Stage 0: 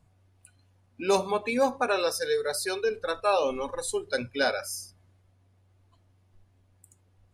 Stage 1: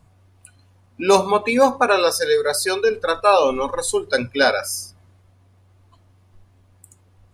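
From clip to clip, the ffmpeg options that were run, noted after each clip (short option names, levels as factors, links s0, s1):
-af "equalizer=f=1100:t=o:w=0.45:g=3.5,volume=2.82"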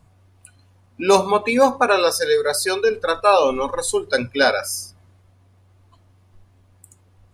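-af anull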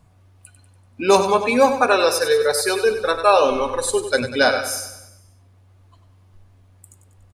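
-af "aecho=1:1:96|192|288|384|480|576:0.316|0.161|0.0823|0.0419|0.0214|0.0109"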